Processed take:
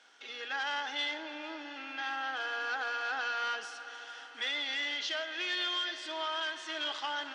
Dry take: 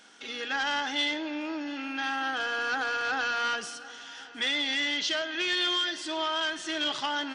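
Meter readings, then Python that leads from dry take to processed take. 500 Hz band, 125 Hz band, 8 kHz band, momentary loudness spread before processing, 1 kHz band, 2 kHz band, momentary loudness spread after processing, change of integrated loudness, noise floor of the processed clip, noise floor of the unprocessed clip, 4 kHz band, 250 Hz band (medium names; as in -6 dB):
-6.5 dB, no reading, -9.0 dB, 9 LU, -5.0 dB, -5.0 dB, 10 LU, -6.0 dB, -49 dBFS, -45 dBFS, -6.0 dB, -13.0 dB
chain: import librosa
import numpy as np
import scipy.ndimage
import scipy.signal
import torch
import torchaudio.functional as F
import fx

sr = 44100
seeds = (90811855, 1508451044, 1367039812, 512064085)

y = scipy.signal.sosfilt(scipy.signal.butter(2, 480.0, 'highpass', fs=sr, output='sos'), x)
y = fx.air_absorb(y, sr, metres=71.0)
y = fx.echo_heads(y, sr, ms=150, heads='all three', feedback_pct=74, wet_db=-21)
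y = y * 10.0 ** (-4.5 / 20.0)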